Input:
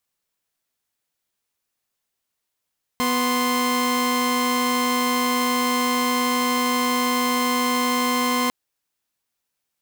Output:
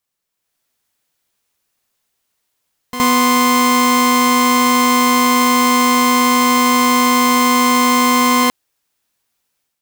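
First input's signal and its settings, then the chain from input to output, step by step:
chord B3/C6 saw, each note -19.5 dBFS 5.50 s
on a send: reverse echo 68 ms -11 dB; on the sum: AGC gain up to 8.5 dB

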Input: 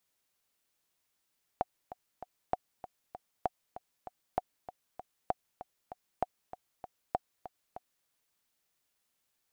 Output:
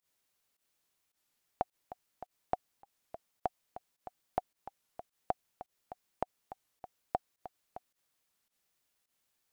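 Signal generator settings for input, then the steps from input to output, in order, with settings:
metronome 195 bpm, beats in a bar 3, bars 7, 735 Hz, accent 14 dB -15.5 dBFS
pump 106 bpm, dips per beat 1, -17 dB, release 87 ms; record warp 33 1/3 rpm, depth 160 cents

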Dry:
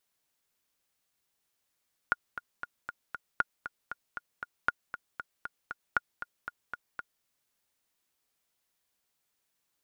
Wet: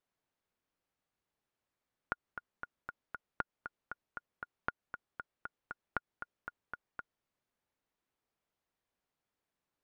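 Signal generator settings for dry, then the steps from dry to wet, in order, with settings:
metronome 234 bpm, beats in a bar 5, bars 4, 1430 Hz, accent 12 dB -11.5 dBFS
compressor, threshold -28 dBFS; LPF 1100 Hz 6 dB/oct

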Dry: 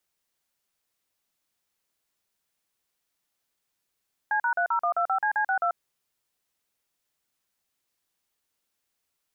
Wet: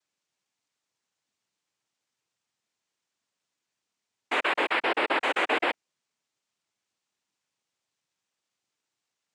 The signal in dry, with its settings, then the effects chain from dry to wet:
DTMF "C#30125CC62", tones 89 ms, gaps 42 ms, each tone -24.5 dBFS
noise vocoder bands 4

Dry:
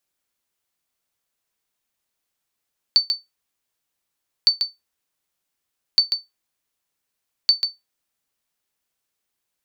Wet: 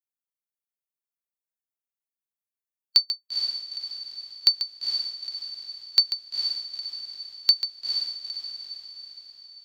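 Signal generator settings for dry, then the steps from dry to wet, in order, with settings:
sonar ping 4530 Hz, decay 0.18 s, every 1.51 s, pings 4, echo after 0.14 s, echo -7 dB -6 dBFS
per-bin expansion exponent 1.5; on a send: diffused feedback echo 0.466 s, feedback 52%, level -5 dB

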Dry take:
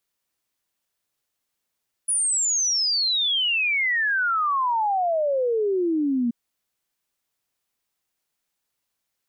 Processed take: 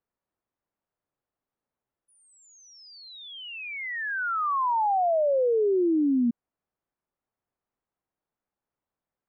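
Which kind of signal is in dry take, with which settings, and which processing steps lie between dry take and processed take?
log sweep 10000 Hz -> 230 Hz 4.23 s -19.5 dBFS
LPF 1100 Hz 12 dB/oct

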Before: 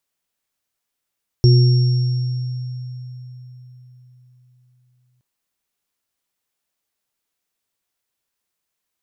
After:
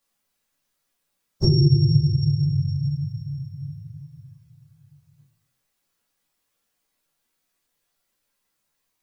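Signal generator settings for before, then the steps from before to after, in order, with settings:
sine partials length 3.77 s, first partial 125 Hz, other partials 359/5510 Hz, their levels -10/-15 dB, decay 4.19 s, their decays 1.47/2.82 s, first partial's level -7 dB
phase scrambler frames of 50 ms; shoebox room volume 190 m³, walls furnished, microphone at 2.3 m; compressor 2:1, threshold -19 dBFS

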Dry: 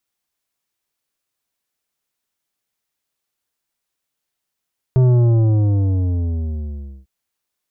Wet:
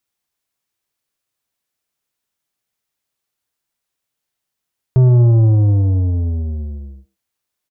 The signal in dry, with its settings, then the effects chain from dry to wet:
sub drop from 130 Hz, over 2.10 s, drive 10 dB, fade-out 2.09 s, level -10.5 dB
bell 110 Hz +3.5 dB 0.96 oct; speakerphone echo 0.11 s, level -13 dB

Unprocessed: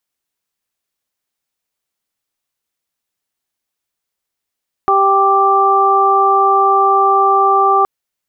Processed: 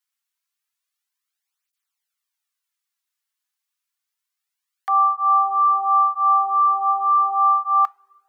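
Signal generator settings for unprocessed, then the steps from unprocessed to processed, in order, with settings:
steady additive tone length 2.97 s, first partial 392 Hz, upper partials 3/5 dB, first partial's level -16 dB
HPF 1000 Hz 24 dB/oct; two-slope reverb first 0.26 s, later 2.2 s, from -18 dB, DRR 17.5 dB; tape flanging out of phase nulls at 0.29 Hz, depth 4.5 ms

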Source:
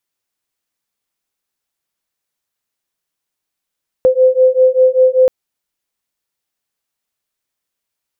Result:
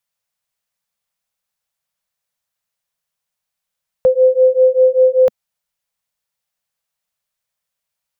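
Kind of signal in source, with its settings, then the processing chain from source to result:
beating tones 512 Hz, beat 5.1 Hz, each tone -10.5 dBFS 1.23 s
Chebyshev band-stop 200–510 Hz, order 2

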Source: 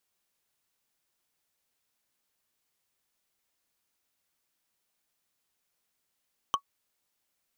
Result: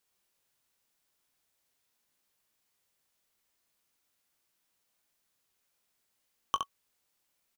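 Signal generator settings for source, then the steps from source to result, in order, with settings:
wood hit, lowest mode 1120 Hz, decay 0.08 s, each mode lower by 5 dB, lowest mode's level -17 dB
doubler 21 ms -12.5 dB; on a send: early reflections 19 ms -13.5 dB, 67 ms -5.5 dB

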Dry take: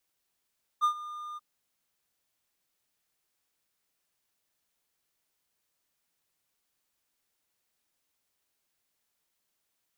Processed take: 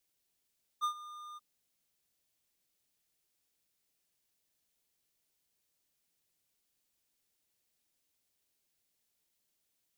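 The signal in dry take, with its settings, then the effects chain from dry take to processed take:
ADSR triangle 1210 Hz, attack 32 ms, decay 91 ms, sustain -17.5 dB, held 0.56 s, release 25 ms -18 dBFS
bell 1200 Hz -7.5 dB 1.7 oct

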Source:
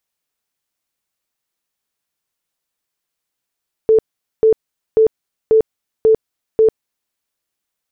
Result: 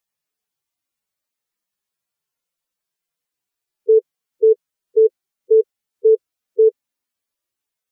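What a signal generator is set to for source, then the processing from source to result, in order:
tone bursts 441 Hz, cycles 43, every 0.54 s, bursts 6, -7 dBFS
median-filter separation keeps harmonic

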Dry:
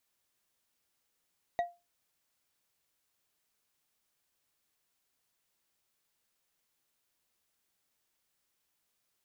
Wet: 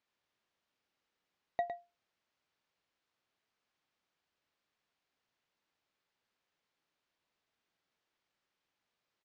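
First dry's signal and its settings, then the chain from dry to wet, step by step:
glass hit, lowest mode 697 Hz, decay 0.25 s, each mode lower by 11 dB, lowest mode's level -24 dB
Gaussian blur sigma 1.8 samples; low shelf 75 Hz -9.5 dB; echo 0.108 s -8 dB

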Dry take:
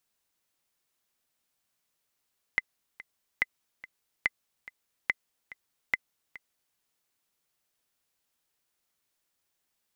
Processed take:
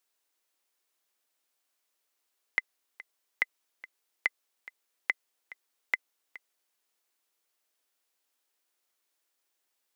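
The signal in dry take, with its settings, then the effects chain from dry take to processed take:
metronome 143 bpm, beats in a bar 2, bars 5, 2040 Hz, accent 19 dB -11 dBFS
HPF 290 Hz 24 dB/oct

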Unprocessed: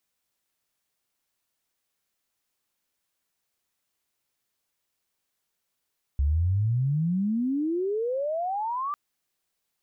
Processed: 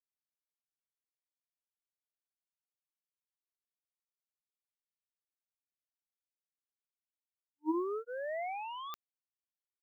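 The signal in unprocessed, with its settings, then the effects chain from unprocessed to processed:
chirp logarithmic 67 Hz -> 1200 Hz -20 dBFS -> -27 dBFS 2.75 s
Chebyshev high-pass 310 Hz, order 10; notch 470 Hz, Q 12; power-law curve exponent 3

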